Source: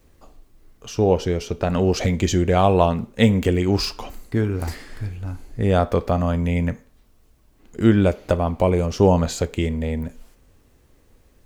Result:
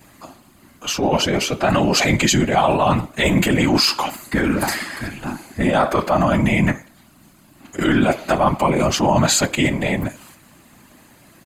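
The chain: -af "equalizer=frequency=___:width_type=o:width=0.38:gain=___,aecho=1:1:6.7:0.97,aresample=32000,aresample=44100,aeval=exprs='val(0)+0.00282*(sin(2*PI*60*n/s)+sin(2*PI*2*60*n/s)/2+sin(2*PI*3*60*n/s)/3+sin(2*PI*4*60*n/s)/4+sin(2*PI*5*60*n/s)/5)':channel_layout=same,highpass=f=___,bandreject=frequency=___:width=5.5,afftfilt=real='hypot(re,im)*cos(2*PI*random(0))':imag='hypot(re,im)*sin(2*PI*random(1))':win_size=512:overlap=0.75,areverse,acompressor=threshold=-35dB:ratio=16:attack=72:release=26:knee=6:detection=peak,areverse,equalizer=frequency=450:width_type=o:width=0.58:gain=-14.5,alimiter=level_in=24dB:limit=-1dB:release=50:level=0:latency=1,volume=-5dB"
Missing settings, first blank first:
3.5k, -3, 270, 5.6k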